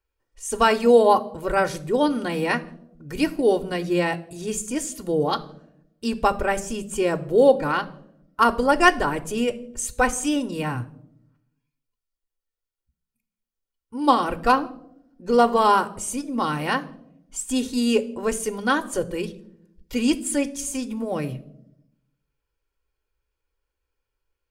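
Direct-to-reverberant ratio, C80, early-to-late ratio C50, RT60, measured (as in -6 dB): 8.0 dB, 21.0 dB, 18.0 dB, no single decay rate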